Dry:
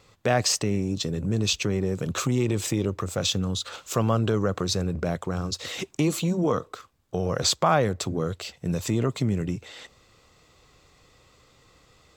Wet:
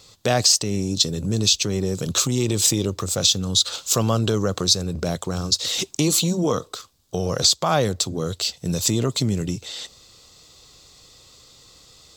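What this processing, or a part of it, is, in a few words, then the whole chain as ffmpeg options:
over-bright horn tweeter: -af "highshelf=frequency=3000:width_type=q:width=1.5:gain=10,alimiter=limit=-7dB:level=0:latency=1:release=288,volume=2.5dB"

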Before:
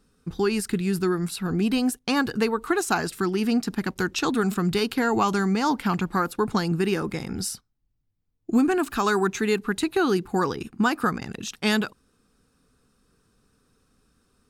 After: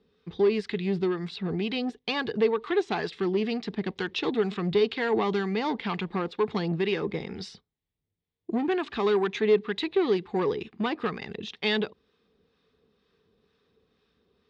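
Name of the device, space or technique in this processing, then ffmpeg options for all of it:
guitar amplifier with harmonic tremolo: -filter_complex "[0:a]acrossover=split=760[link_01][link_02];[link_01]aeval=exprs='val(0)*(1-0.5/2+0.5/2*cos(2*PI*2.1*n/s))':channel_layout=same[link_03];[link_02]aeval=exprs='val(0)*(1-0.5/2-0.5/2*cos(2*PI*2.1*n/s))':channel_layout=same[link_04];[link_03][link_04]amix=inputs=2:normalize=0,asoftclip=type=tanh:threshold=-20dB,highpass=82,equalizer=frequency=120:width_type=q:width=4:gain=-9,equalizer=frequency=270:width_type=q:width=4:gain=-6,equalizer=frequency=430:width_type=q:width=4:gain=8,equalizer=frequency=1400:width_type=q:width=4:gain=-8,equalizer=frequency=2000:width_type=q:width=4:gain=5,equalizer=frequency=3500:width_type=q:width=4:gain=7,lowpass=frequency=4300:width=0.5412,lowpass=frequency=4300:width=1.3066"

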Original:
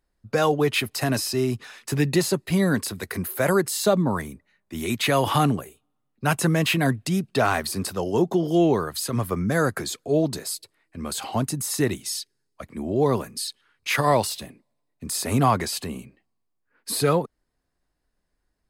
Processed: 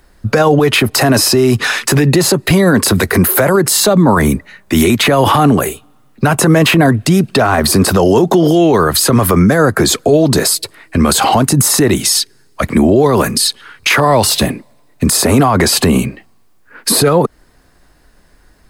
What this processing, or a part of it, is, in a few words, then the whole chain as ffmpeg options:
mastering chain: -filter_complex "[0:a]equalizer=frequency=1500:width_type=o:width=0.77:gain=2.5,acrossover=split=270|1200[link_01][link_02][link_03];[link_01]acompressor=threshold=-30dB:ratio=4[link_04];[link_02]acompressor=threshold=-22dB:ratio=4[link_05];[link_03]acompressor=threshold=-36dB:ratio=4[link_06];[link_04][link_05][link_06]amix=inputs=3:normalize=0,acompressor=threshold=-31dB:ratio=1.5,asoftclip=type=hard:threshold=-17.5dB,alimiter=level_in=28dB:limit=-1dB:release=50:level=0:latency=1,volume=-1dB"

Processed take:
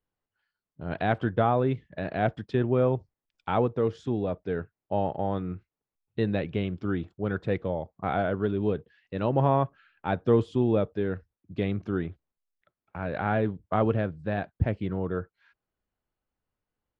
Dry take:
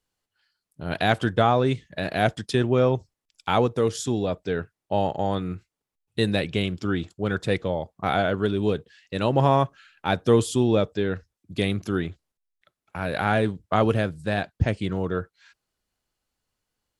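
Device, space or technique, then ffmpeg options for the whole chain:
phone in a pocket: -af "lowpass=3200,highshelf=frequency=2400:gain=-11,volume=-3dB"

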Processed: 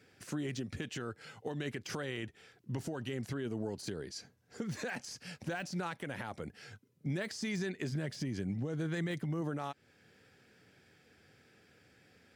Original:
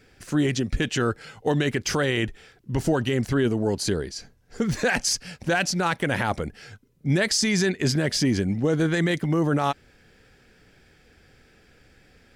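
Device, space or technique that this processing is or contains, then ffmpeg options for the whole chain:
podcast mastering chain: -filter_complex "[0:a]asettb=1/sr,asplit=3[link_01][link_02][link_03];[link_01]atrim=end=7.914[link_04];[link_02]atrim=start=7.91:end=9.41,asetpts=PTS-STARTPTS,afade=type=in:duration=0.004:curve=qsin,afade=type=out:start_time=1.496:duration=0.004:curve=qsin,equalizer=frequency=130:width_type=o:width=0.73:gain=6[link_05];[link_03]atrim=start=9.406[link_06];[link_04][link_05]acrossfade=duration=0.004:curve1=hsin:curve2=qsin[link_07];[link_07][link_06]acrossfade=duration=0.004:curve1=qsin:curve2=hsin,highpass=frequency=91:width=0.5412,highpass=frequency=91:width=1.3066,deesser=0.65,acompressor=threshold=-24dB:ratio=4,alimiter=limit=-20.5dB:level=0:latency=1:release=392,volume=-6.5dB" -ar 48000 -c:a libmp3lame -b:a 96k

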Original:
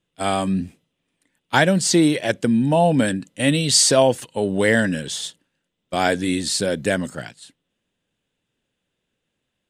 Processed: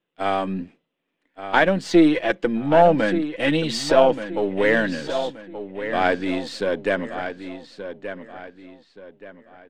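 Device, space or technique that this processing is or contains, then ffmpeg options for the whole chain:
crystal radio: -filter_complex "[0:a]asettb=1/sr,asplit=3[link_01][link_02][link_03];[link_01]atrim=end=1.864[link_04];[link_02]atrim=start=1.86:end=3.94,asetpts=PTS-STARTPTS,afade=type=in:duration=0.004:curve=qsin,afade=type=out:start_time=2.076:duration=0.004:curve=qsin,aecho=1:1:6:0.61,atrim=end_sample=91728[link_05];[link_03]atrim=start=3.936[link_06];[link_04][link_05]acrossfade=duration=0.004:curve1=hsin:curve2=qsin[link_07];[link_07][link_06]acrossfade=duration=0.004:curve1=qsin:curve2=hsin,highpass=270,lowpass=2500,aeval=exprs='if(lt(val(0),0),0.708*val(0),val(0))':channel_layout=same,asplit=2[link_08][link_09];[link_09]adelay=1177,lowpass=frequency=4300:poles=1,volume=-10dB,asplit=2[link_10][link_11];[link_11]adelay=1177,lowpass=frequency=4300:poles=1,volume=0.35,asplit=2[link_12][link_13];[link_13]adelay=1177,lowpass=frequency=4300:poles=1,volume=0.35,asplit=2[link_14][link_15];[link_15]adelay=1177,lowpass=frequency=4300:poles=1,volume=0.35[link_16];[link_08][link_10][link_12][link_14][link_16]amix=inputs=5:normalize=0,volume=1.5dB"

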